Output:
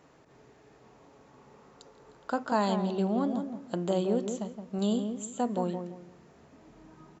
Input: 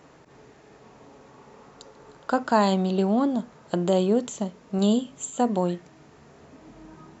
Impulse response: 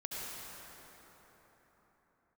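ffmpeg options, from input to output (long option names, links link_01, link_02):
-filter_complex "[0:a]asplit=2[link_01][link_02];[link_02]adelay=169,lowpass=frequency=1000:poles=1,volume=-6dB,asplit=2[link_03][link_04];[link_04]adelay=169,lowpass=frequency=1000:poles=1,volume=0.32,asplit=2[link_05][link_06];[link_06]adelay=169,lowpass=frequency=1000:poles=1,volume=0.32,asplit=2[link_07][link_08];[link_08]adelay=169,lowpass=frequency=1000:poles=1,volume=0.32[link_09];[link_01][link_03][link_05][link_07][link_09]amix=inputs=5:normalize=0,volume=-7dB"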